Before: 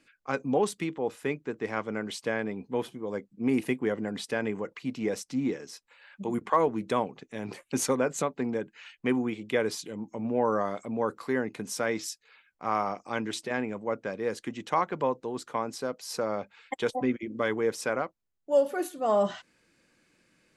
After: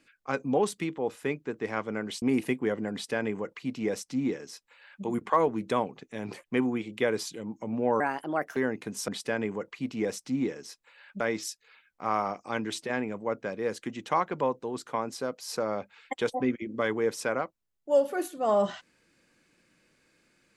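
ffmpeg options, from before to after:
-filter_complex "[0:a]asplit=7[s0][s1][s2][s3][s4][s5][s6];[s0]atrim=end=2.222[s7];[s1]atrim=start=3.418:end=7.642[s8];[s2]atrim=start=8.958:end=10.524[s9];[s3]atrim=start=10.52:end=11.29,asetpts=PTS-STARTPTS,asetrate=60417,aresample=44100,atrim=end_sample=24786,asetpts=PTS-STARTPTS[s10];[s4]atrim=start=11.286:end=11.812[s11];[s5]atrim=start=4.118:end=6.242[s12];[s6]atrim=start=11.808[s13];[s7][s8]acrossfade=d=0.004:c1=hsin:c2=hsin[s14];[s14][s9]acrossfade=d=0.004:c1=hsin:c2=hsin[s15];[s15][s10]acrossfade=d=0.004:c1=hsin:c2=hsin[s16];[s16][s11]acrossfade=d=0.004:c1=hsin:c2=hsin[s17];[s17][s12]acrossfade=d=0.004:c1=hsin:c2=hsin[s18];[s18][s13]acrossfade=d=0.004:c1=hsin:c2=hsin"

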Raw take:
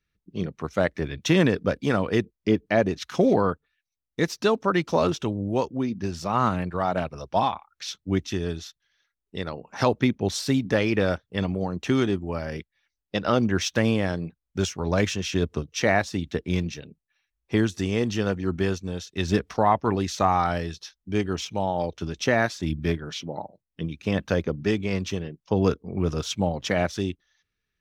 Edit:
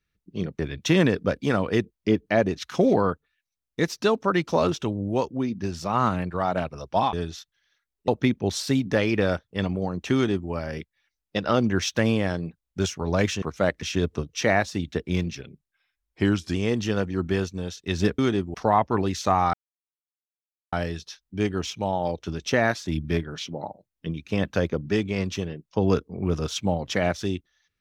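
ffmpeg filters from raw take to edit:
-filter_complex "[0:a]asplit=11[s0][s1][s2][s3][s4][s5][s6][s7][s8][s9][s10];[s0]atrim=end=0.592[s11];[s1]atrim=start=0.988:end=7.532[s12];[s2]atrim=start=8.408:end=9.362[s13];[s3]atrim=start=9.868:end=15.212[s14];[s4]atrim=start=0.588:end=0.992[s15];[s5]atrim=start=15.208:end=16.754[s16];[s6]atrim=start=16.75:end=17.84,asetpts=PTS-STARTPTS,asetrate=40572,aresample=44100[s17];[s7]atrim=start=17.836:end=19.482[s18];[s8]atrim=start=11.928:end=12.292[s19];[s9]atrim=start=19.478:end=20.47,asetpts=PTS-STARTPTS,afade=t=out:st=0.988:d=0.004:c=hsin,apad=pad_dur=1.19[s20];[s10]atrim=start=20.47,asetpts=PTS-STARTPTS,afade=t=in:d=0.004:c=hsin[s21];[s11][s12]acrossfade=d=0.004:c1=hsin:c2=hsin[s22];[s22][s13]acrossfade=d=0.004:c1=hsin:c2=hsin[s23];[s23][s14]acrossfade=d=0.004:c1=hsin:c2=hsin[s24];[s24][s15]acrossfade=d=0.004:c1=hsin:c2=hsin[s25];[s25][s16]acrossfade=d=0.004:c1=hsin:c2=hsin[s26];[s26][s17]acrossfade=d=0.004:c1=hsin:c2=hsin[s27];[s27][s18]acrossfade=d=0.004:c1=hsin:c2=hsin[s28];[s28][s19]acrossfade=d=0.004:c1=hsin:c2=hsin[s29];[s20][s21]concat=n=2:v=0:a=1[s30];[s29][s30]acrossfade=d=0.004:c1=hsin:c2=hsin"

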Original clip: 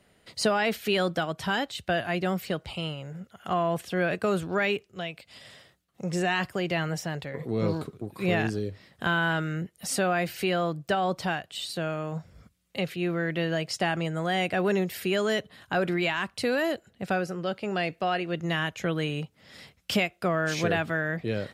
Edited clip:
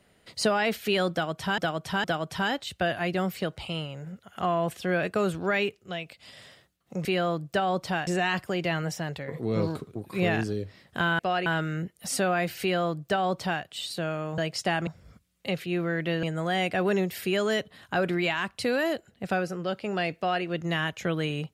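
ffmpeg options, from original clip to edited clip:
-filter_complex "[0:a]asplit=10[s0][s1][s2][s3][s4][s5][s6][s7][s8][s9];[s0]atrim=end=1.582[s10];[s1]atrim=start=1.118:end=1.582[s11];[s2]atrim=start=1.118:end=6.132[s12];[s3]atrim=start=10.398:end=11.422[s13];[s4]atrim=start=6.128:end=9.252[s14];[s5]atrim=start=17.958:end=18.232[s15];[s6]atrim=start=9.248:end=12.172[s16];[s7]atrim=start=13.528:end=14.022[s17];[s8]atrim=start=12.168:end=13.532[s18];[s9]atrim=start=14.018[s19];[s10][s11]acrossfade=d=0.004:c1=hsin:c2=hsin[s20];[s20][s12]acrossfade=d=0.004:c1=hsin:c2=hsin[s21];[s21][s13]acrossfade=d=0.004:c1=hsin:c2=hsin[s22];[s22][s14]acrossfade=d=0.004:c1=hsin:c2=hsin[s23];[s23][s15]acrossfade=d=0.004:c1=hsin:c2=hsin[s24];[s24][s16]acrossfade=d=0.004:c1=hsin:c2=hsin[s25];[s25][s17]acrossfade=d=0.004:c1=hsin:c2=hsin[s26];[s26][s18]acrossfade=d=0.004:c1=hsin:c2=hsin[s27];[s27][s19]acrossfade=d=0.004:c1=hsin:c2=hsin"

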